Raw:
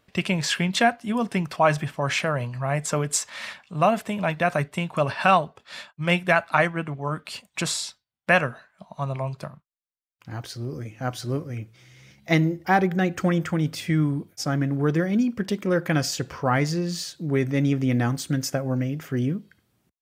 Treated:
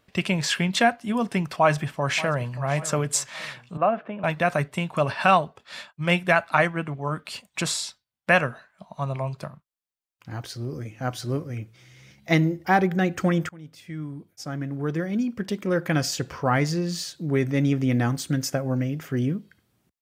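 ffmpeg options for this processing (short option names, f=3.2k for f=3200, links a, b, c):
-filter_complex "[0:a]asplit=2[a][b];[b]afade=t=in:st=1.5:d=0.01,afade=t=out:st=2.53:d=0.01,aecho=0:1:580|1160|1740|2320:0.158489|0.0713202|0.0320941|0.0144423[c];[a][c]amix=inputs=2:normalize=0,asettb=1/sr,asplit=3[d][e][f];[d]atrim=end=3.774[g];[e]atrim=start=3.77:end=4.24,asetpts=PTS-STARTPTS,afade=t=in:d=0.004:c=qsin,afade=t=out:st=0.466:d=0.004:c=qsin,highpass=280,equalizer=f=420:t=q:w=4:g=-3,equalizer=f=940:t=q:w=4:g=-6,equalizer=f=2k:t=q:w=4:g=-9,lowpass=f=2.2k:w=0.5412,lowpass=f=2.2k:w=1.3066[h];[f]atrim=start=4.236[i];[g][h]acrossfade=d=0.004:c1=hsin:c2=qsin[j];[j][i]acrossfade=d=0.004:c1=qsin:c2=hsin,asplit=2[k][l];[k]atrim=end=13.49,asetpts=PTS-STARTPTS,afade=t=out:st=13.486:d=0.004:c=hsin:silence=0.0707946[m];[l]atrim=start=13.49,asetpts=PTS-STARTPTS,afade=t=in:d=2.64:silence=0.0707946[n];[m][n]concat=n=2:v=0:a=1"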